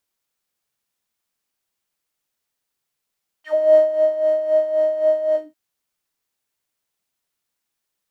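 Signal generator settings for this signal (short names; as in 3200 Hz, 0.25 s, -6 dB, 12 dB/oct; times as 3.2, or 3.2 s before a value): synth patch with tremolo D#5, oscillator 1 square, oscillator 2 level -10 dB, sub -9 dB, noise -5.5 dB, filter bandpass, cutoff 200 Hz, Q 5.6, filter envelope 4 oct, filter decay 0.09 s, attack 0.234 s, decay 0.25 s, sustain -7.5 dB, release 0.19 s, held 1.91 s, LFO 3.8 Hz, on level 9.5 dB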